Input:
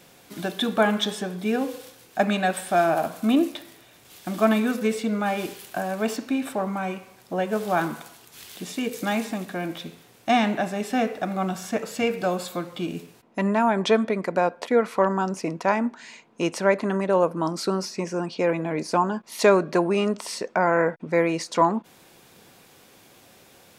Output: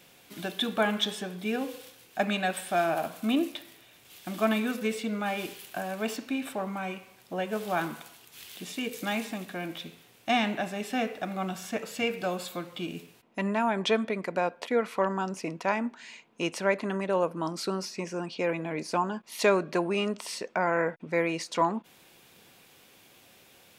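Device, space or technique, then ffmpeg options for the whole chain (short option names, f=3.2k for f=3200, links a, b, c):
presence and air boost: -af "equalizer=f=2.8k:t=o:w=1.1:g=6,highshelf=f=12k:g=6.5,volume=-6.5dB"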